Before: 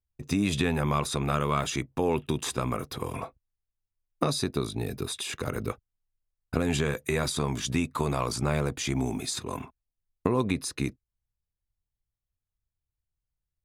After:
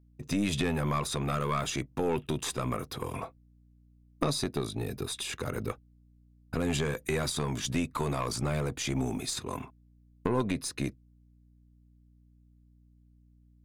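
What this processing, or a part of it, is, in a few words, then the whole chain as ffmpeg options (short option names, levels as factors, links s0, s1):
valve amplifier with mains hum: -af "aeval=exprs='(tanh(6.31*val(0)+0.45)-tanh(0.45))/6.31':c=same,aeval=exprs='val(0)+0.00112*(sin(2*PI*60*n/s)+sin(2*PI*2*60*n/s)/2+sin(2*PI*3*60*n/s)/3+sin(2*PI*4*60*n/s)/4+sin(2*PI*5*60*n/s)/5)':c=same"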